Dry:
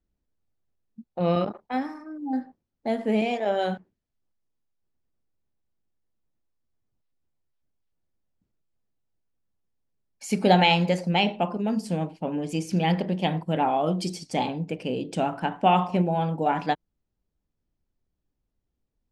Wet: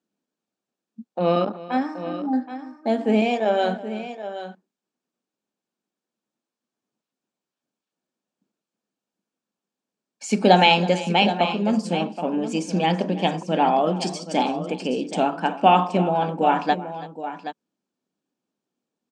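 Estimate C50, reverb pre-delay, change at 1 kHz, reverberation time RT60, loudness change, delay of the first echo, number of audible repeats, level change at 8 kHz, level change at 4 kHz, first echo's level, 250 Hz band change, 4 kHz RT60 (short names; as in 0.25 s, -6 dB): none, none, +5.0 dB, none, +4.0 dB, 0.327 s, 2, +4.5 dB, +4.5 dB, -18.0 dB, +3.0 dB, none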